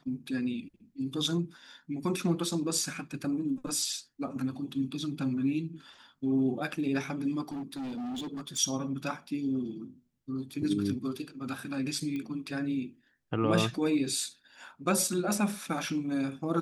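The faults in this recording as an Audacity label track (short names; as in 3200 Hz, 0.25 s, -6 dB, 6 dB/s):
7.430000	8.580000	clipped -34 dBFS
12.160000	12.160000	pop -26 dBFS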